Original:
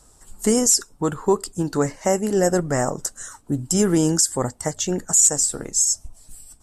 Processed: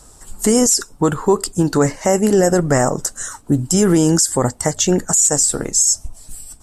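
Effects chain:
brickwall limiter −13.5 dBFS, peak gain reduction 9 dB
level +8.5 dB

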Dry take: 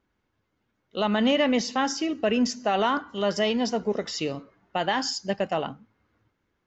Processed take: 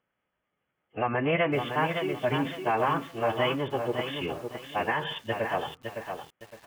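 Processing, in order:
high-pass filter 460 Hz 6 dB per octave
downsampling to 11,025 Hz
phase-vocoder pitch shift with formants kept −9.5 semitones
feedback echo at a low word length 561 ms, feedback 35%, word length 8 bits, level −6 dB

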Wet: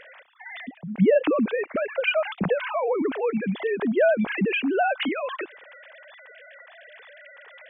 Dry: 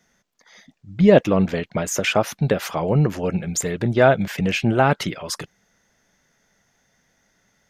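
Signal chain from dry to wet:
three sine waves on the formant tracks
envelope flattener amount 50%
level −8.5 dB

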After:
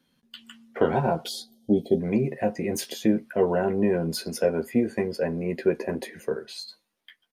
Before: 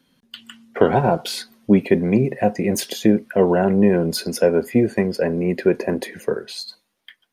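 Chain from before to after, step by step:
double-tracking delay 13 ms −6 dB
gain on a spectral selection 0:01.28–0:02.00, 860–3,000 Hz −26 dB
level −7.5 dB

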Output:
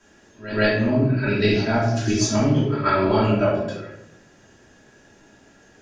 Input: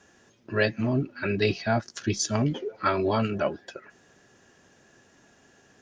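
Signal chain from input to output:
backwards echo 136 ms −14 dB
rectangular room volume 210 cubic metres, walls mixed, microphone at 2.8 metres
level −3.5 dB

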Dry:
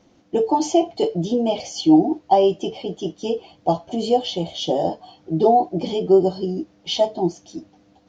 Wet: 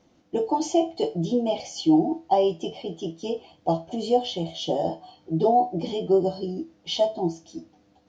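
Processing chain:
tuned comb filter 82 Hz, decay 0.28 s, harmonics all, mix 60%

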